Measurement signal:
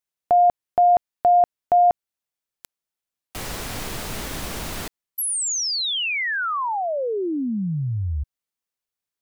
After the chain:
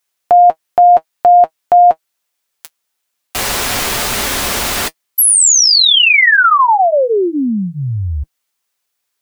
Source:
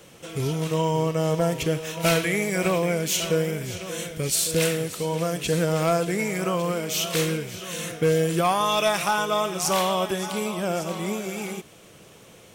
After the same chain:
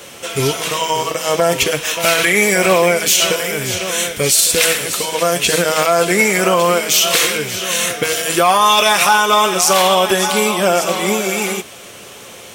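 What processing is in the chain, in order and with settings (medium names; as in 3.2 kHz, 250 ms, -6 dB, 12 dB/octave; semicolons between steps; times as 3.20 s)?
bass shelf 360 Hz -11.5 dB; comb of notches 160 Hz; loudness maximiser +19 dB; trim -1.5 dB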